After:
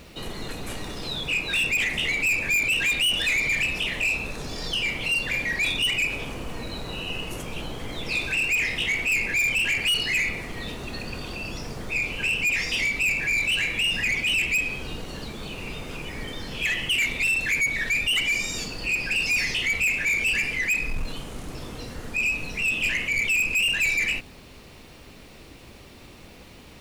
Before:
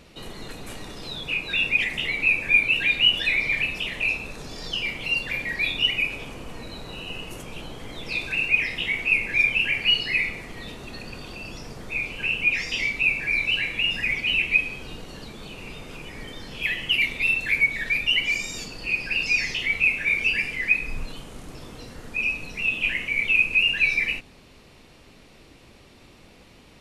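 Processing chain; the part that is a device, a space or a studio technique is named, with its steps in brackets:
open-reel tape (soft clipping −23.5 dBFS, distortion −8 dB; parametric band 68 Hz +3 dB; white noise bed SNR 36 dB)
level +4 dB

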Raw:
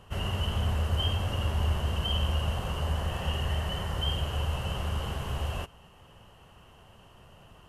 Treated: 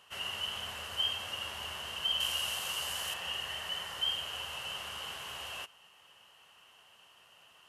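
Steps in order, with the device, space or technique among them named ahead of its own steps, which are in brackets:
filter by subtraction (in parallel: low-pass filter 2,900 Hz 12 dB per octave + polarity inversion)
0:02.20–0:03.14: on the sum: high-shelf EQ 3,700 Hz +12 dB

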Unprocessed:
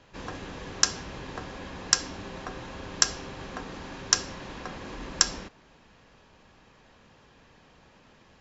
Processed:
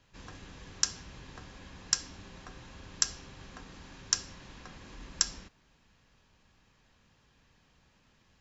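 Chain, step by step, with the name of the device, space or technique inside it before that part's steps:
smiley-face EQ (low-shelf EQ 150 Hz +4.5 dB; parametric band 520 Hz −6 dB 2.2 octaves; high-shelf EQ 6,400 Hz +8 dB)
level −9 dB

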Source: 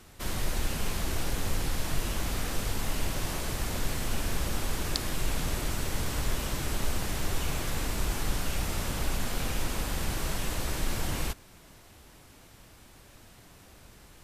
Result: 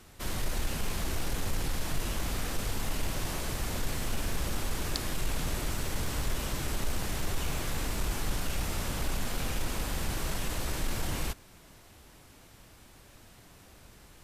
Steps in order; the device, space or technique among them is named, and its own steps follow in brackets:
parallel distortion (in parallel at −5 dB: hard clipping −25.5 dBFS, distortion −13 dB)
on the sum: level −5 dB

